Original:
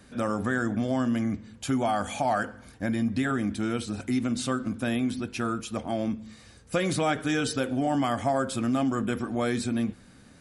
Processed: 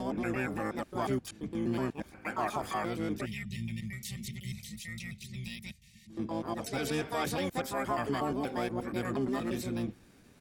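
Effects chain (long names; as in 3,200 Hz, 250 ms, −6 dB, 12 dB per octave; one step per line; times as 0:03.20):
slices reordered back to front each 119 ms, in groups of 8
pitch-shifted copies added −12 semitones −10 dB, +7 semitones −2 dB
gain on a spectral selection 0:03.26–0:06.10, 230–1,800 Hz −25 dB
level −8.5 dB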